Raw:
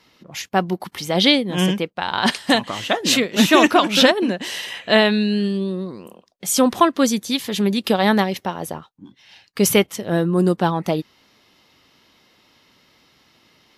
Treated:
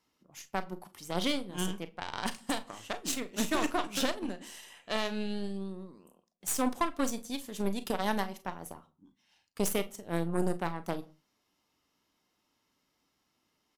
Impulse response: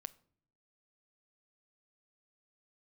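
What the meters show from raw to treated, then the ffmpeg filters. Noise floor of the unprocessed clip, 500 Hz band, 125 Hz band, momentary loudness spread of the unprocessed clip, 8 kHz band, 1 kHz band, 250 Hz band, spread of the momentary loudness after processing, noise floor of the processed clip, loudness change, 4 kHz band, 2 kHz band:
−59 dBFS, −16.0 dB, −15.5 dB, 13 LU, −12.0 dB, −14.5 dB, −16.0 dB, 14 LU, −78 dBFS, −15.5 dB, −18.0 dB, −17.0 dB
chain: -filter_complex "[0:a]equalizer=frequency=125:width_type=o:width=1:gain=-7,equalizer=frequency=500:width_type=o:width=1:gain=-5,equalizer=frequency=2000:width_type=o:width=1:gain=-6,equalizer=frequency=4000:width_type=o:width=1:gain=-8,equalizer=frequency=8000:width_type=o:width=1:gain=5,aeval=exprs='0.596*(cos(1*acos(clip(val(0)/0.596,-1,1)))-cos(1*PI/2))+0.211*(cos(2*acos(clip(val(0)/0.596,-1,1)))-cos(2*PI/2))+0.0596*(cos(7*acos(clip(val(0)/0.596,-1,1)))-cos(7*PI/2))':channel_layout=same,alimiter=limit=-11.5dB:level=0:latency=1:release=256,aecho=1:1:36|47:0.188|0.133[link_01];[1:a]atrim=start_sample=2205,afade=type=out:start_time=0.25:duration=0.01,atrim=end_sample=11466[link_02];[link_01][link_02]afir=irnorm=-1:irlink=0,volume=-1dB"

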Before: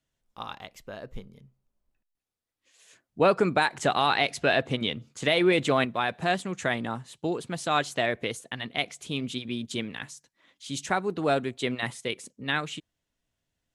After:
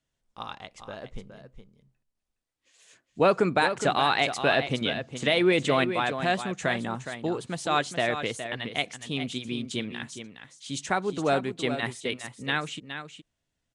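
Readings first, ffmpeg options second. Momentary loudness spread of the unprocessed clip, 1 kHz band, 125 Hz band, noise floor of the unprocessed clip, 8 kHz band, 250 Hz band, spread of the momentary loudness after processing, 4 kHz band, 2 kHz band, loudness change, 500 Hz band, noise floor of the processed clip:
18 LU, +0.5 dB, +0.5 dB, −84 dBFS, +0.5 dB, +0.5 dB, 18 LU, +0.5 dB, +0.5 dB, +0.5 dB, +0.5 dB, −82 dBFS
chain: -filter_complex "[0:a]asplit=2[link_01][link_02];[link_02]aecho=0:1:416:0.335[link_03];[link_01][link_03]amix=inputs=2:normalize=0,aresample=22050,aresample=44100"

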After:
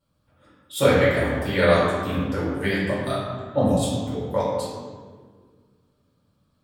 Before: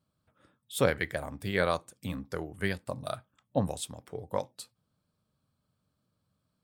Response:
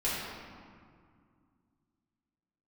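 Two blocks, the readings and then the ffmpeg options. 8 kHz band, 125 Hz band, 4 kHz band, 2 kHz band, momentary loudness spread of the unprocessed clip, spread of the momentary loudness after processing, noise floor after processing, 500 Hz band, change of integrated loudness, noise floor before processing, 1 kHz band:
+6.0 dB, +11.0 dB, +9.0 dB, +9.0 dB, 13 LU, 11 LU, −68 dBFS, +11.5 dB, +10.5 dB, −80 dBFS, +10.0 dB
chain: -filter_complex "[1:a]atrim=start_sample=2205,asetrate=57330,aresample=44100[link_01];[0:a][link_01]afir=irnorm=-1:irlink=0,volume=3.5dB"

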